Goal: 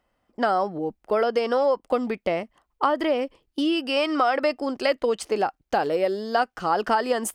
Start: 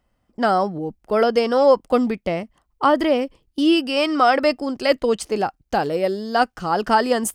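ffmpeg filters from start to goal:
-af "acompressor=threshold=-19dB:ratio=6,bass=f=250:g=-10,treble=f=4k:g=-5,volume=1.5dB"

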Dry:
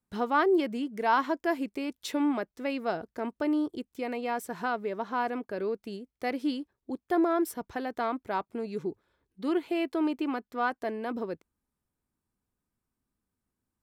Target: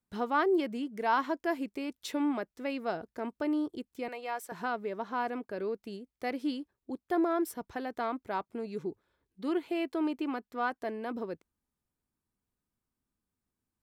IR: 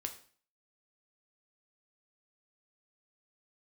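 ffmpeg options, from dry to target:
-filter_complex "[0:a]asettb=1/sr,asplit=3[a][b][c];[a]atrim=end=4.084[d];[b]atrim=start=4.08:end=4.52,asetpts=PTS-STARTPTS,afade=t=in:d=0.004:c=qsin,afade=t=out:st=0.436:d=0.004:c=qsin,highpass=540[e];[c]atrim=start=4.516[f];[d][e]acrossfade=d=0.004:c1=hsin:c2=qsin[g];[g][f]acrossfade=d=0.004:c1=qsin:c2=hsin,volume=-3dB"

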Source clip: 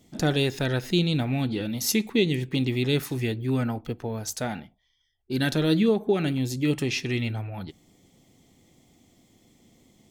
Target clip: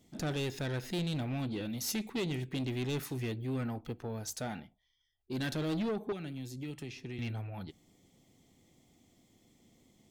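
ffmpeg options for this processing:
-filter_complex "[0:a]asettb=1/sr,asplit=3[a][b][c];[a]atrim=end=6.124[d];[b]atrim=start=6.12:end=7.19,asetpts=PTS-STARTPTS,afade=t=in:d=0.004:c=qsin,afade=t=out:st=1.066:d=0.004:c=qsin,acrossover=split=150|1100[e][f][g];[e]acompressor=threshold=-41dB:ratio=4[h];[f]acompressor=threshold=-36dB:ratio=4[i];[g]acompressor=threshold=-44dB:ratio=4[j];[h][i][j]amix=inputs=3:normalize=0[k];[c]atrim=start=7.186[l];[d][k]acrossfade=d=0.004:c1=hsin:c2=qsin[m];[m][l]acrossfade=d=0.004:c1=qsin:c2=hsin,asoftclip=type=tanh:threshold=-23.5dB,volume=-6.5dB"

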